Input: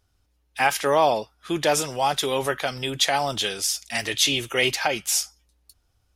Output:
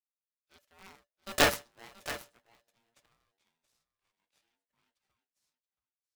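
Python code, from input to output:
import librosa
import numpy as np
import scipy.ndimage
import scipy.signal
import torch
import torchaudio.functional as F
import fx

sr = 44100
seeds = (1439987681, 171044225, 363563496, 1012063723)

p1 = fx.doppler_pass(x, sr, speed_mps=54, closest_m=3.4, pass_at_s=1.41)
p2 = fx.cheby_harmonics(p1, sr, harmonics=(3, 4), levels_db=(-10, -7), full_scale_db=-7.5)
p3 = p2 + fx.echo_single(p2, sr, ms=677, db=-14.5, dry=0)
y = p3 * np.sign(np.sin(2.0 * np.pi * 580.0 * np.arange(len(p3)) / sr))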